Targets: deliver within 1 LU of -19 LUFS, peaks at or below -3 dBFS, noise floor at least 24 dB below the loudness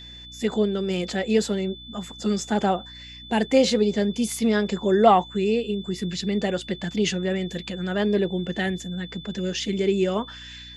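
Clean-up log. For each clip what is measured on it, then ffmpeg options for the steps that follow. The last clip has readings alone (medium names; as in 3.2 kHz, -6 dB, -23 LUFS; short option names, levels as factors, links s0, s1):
hum 60 Hz; highest harmonic 300 Hz; hum level -45 dBFS; steady tone 3.5 kHz; tone level -41 dBFS; loudness -24.0 LUFS; peak level -4.0 dBFS; loudness target -19.0 LUFS
-> -af "bandreject=f=60:t=h:w=4,bandreject=f=120:t=h:w=4,bandreject=f=180:t=h:w=4,bandreject=f=240:t=h:w=4,bandreject=f=300:t=h:w=4"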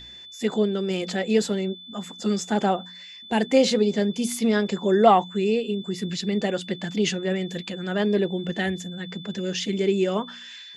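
hum not found; steady tone 3.5 kHz; tone level -41 dBFS
-> -af "bandreject=f=3500:w=30"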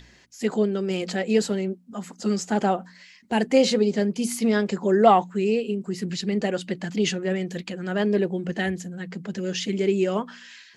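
steady tone not found; loudness -24.5 LUFS; peak level -4.0 dBFS; loudness target -19.0 LUFS
-> -af "volume=1.88,alimiter=limit=0.708:level=0:latency=1"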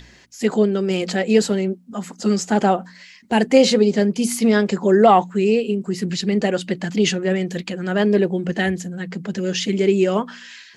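loudness -19.0 LUFS; peak level -3.0 dBFS; noise floor -47 dBFS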